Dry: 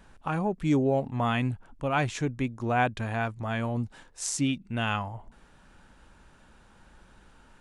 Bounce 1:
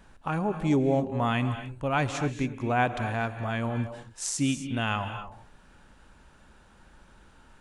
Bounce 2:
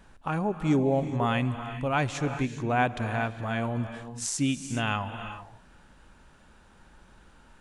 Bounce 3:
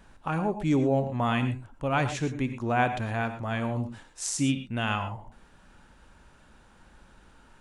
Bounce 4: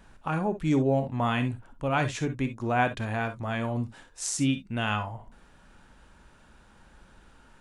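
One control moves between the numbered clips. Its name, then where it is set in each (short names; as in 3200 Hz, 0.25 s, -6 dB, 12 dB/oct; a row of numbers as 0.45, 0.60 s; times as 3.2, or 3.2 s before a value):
non-linear reverb, gate: 290, 440, 140, 80 ms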